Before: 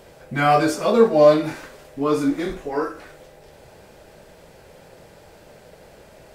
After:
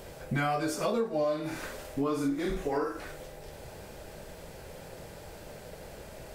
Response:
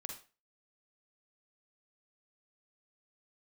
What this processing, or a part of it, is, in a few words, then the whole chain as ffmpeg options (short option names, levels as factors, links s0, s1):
ASMR close-microphone chain: -filter_complex "[0:a]asettb=1/sr,asplit=3[s0][s1][s2];[s0]atrim=end=1.184[s3];[s1]atrim=start=1.18:end=2.97,asetpts=PTS-STARTPTS,afade=t=in:d=0.004:c=qsin,afade=t=out:st=1.786:d=0.004:c=qsin,asplit=2[s4][s5];[s5]adelay=50,volume=0.473[s6];[s4][s6]amix=inputs=2:normalize=0,atrim=end_sample=78939[s7];[s2]atrim=start=2.966[s8];[s3][s7]acrossfade=d=0.004:c1=hsin:c2=qsin[s9];[s9][s8]acrossfade=d=0.004:c1=qsin:c2=hsin,lowshelf=f=100:g=7,acompressor=threshold=0.0447:ratio=8,highshelf=f=7400:g=6"